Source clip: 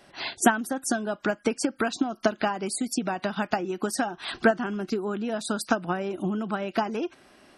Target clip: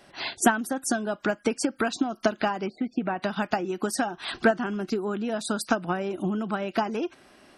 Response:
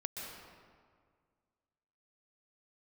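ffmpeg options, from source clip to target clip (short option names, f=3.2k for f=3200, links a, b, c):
-filter_complex "[0:a]asettb=1/sr,asplit=3[a][b][c];[a]atrim=end=2.664[d];[b]atrim=start=2.66:end=3.22,asetpts=PTS-STARTPTS,afade=t=in:d=0.004:c=qsin,afade=t=out:st=0.556:d=0.004:c=qsin,lowpass=f=2.6k:w=0.5412,lowpass=f=2.6k:w=1.3066[e];[c]atrim=start=3.216[f];[d][e]acrossfade=d=0.004:c1=hsin:c2=qsin[g];[g][f]acrossfade=d=0.004:c1=qsin:c2=hsin,asplit=2[h][i];[i]asoftclip=type=tanh:threshold=-17.5dB,volume=-9dB[j];[h][j]amix=inputs=2:normalize=0,volume=-2dB"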